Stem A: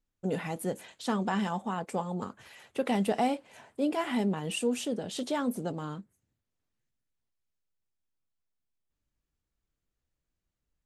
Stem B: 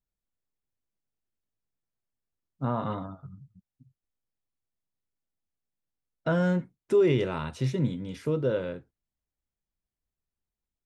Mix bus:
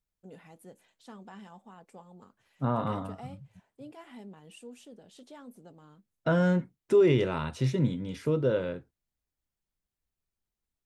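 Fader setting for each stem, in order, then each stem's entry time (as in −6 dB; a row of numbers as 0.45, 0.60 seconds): −18.0, +0.5 decibels; 0.00, 0.00 seconds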